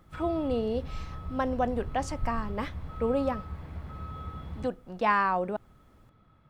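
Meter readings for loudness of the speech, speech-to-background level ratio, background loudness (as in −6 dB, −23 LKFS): −31.0 LKFS, 10.0 dB, −41.0 LKFS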